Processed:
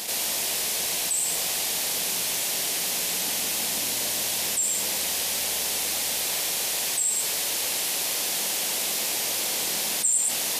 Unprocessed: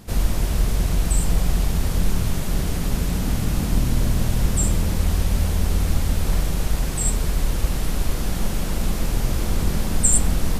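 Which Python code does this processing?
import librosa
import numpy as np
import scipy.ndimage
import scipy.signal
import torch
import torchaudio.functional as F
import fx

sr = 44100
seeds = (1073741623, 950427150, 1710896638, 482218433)

y = scipy.signal.sosfilt(scipy.signal.butter(2, 1000.0, 'highpass', fs=sr, output='sos'), x)
y = fx.peak_eq(y, sr, hz=1300.0, db=-14.0, octaves=1.1)
y = y + 10.0 ** (-7.5 / 20.0) * np.pad(y, (int(112 * sr / 1000.0), 0))[:len(y)]
y = fx.env_flatten(y, sr, amount_pct=70)
y = y * librosa.db_to_amplitude(-5.0)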